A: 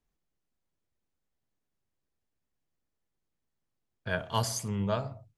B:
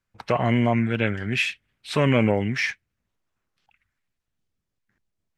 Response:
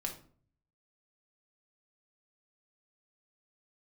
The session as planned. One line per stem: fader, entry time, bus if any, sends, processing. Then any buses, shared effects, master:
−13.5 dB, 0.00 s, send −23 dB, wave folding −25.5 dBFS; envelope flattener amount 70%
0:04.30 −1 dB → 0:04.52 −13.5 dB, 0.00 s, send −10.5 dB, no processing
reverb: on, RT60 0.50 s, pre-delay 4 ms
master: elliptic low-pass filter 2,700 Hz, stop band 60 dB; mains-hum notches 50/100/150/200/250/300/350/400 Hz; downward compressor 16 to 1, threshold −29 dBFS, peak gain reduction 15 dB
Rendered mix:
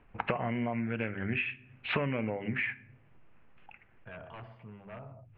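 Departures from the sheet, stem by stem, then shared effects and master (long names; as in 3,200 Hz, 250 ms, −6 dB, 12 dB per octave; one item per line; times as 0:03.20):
stem A: send off
stem B −1.0 dB → +9.0 dB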